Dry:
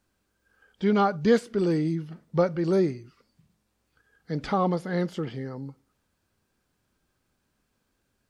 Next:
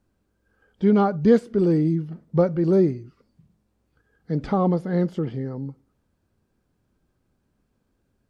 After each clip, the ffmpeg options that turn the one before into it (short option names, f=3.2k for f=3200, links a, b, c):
-af "tiltshelf=f=880:g=6.5"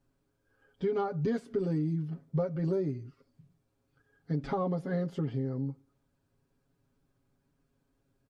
-af "aecho=1:1:7.3:0.93,acompressor=threshold=-21dB:ratio=5,volume=-6.5dB"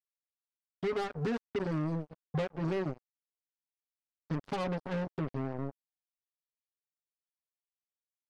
-af "acrusher=bits=4:mix=0:aa=0.5,volume=-3.5dB"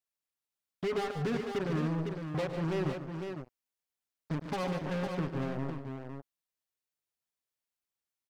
-af "asoftclip=type=hard:threshold=-30dB,aecho=1:1:110|146|423|506:0.224|0.355|0.119|0.473,volume=2dB"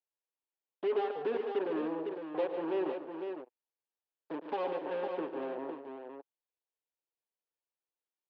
-filter_complex "[0:a]asplit=2[a][b];[b]aeval=exprs='val(0)*gte(abs(val(0)),0.00668)':c=same,volume=-7.5dB[c];[a][c]amix=inputs=2:normalize=0,highpass=f=320:w=0.5412,highpass=f=320:w=1.3066,equalizer=f=330:t=q:w=4:g=6,equalizer=f=480:t=q:w=4:g=6,equalizer=f=890:t=q:w=4:g=5,equalizer=f=1.3k:t=q:w=4:g=-5,equalizer=f=2.1k:t=q:w=4:g=-7,lowpass=f=3.1k:w=0.5412,lowpass=f=3.1k:w=1.3066,volume=-4.5dB"